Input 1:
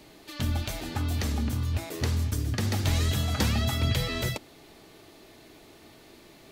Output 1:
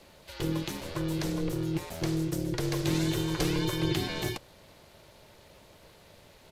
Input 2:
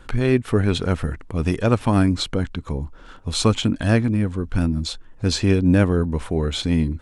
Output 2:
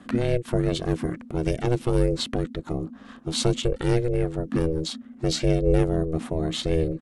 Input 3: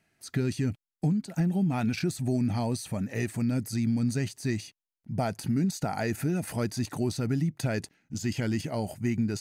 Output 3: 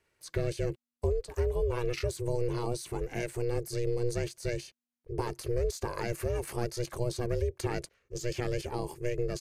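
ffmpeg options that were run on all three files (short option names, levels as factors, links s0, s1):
-filter_complex "[0:a]acrossover=split=320|3000[s0][s1][s2];[s1]acompressor=threshold=0.0316:ratio=6[s3];[s0][s3][s2]amix=inputs=3:normalize=0,aeval=exprs='val(0)*sin(2*PI*240*n/s)':c=same,aresample=32000,aresample=44100"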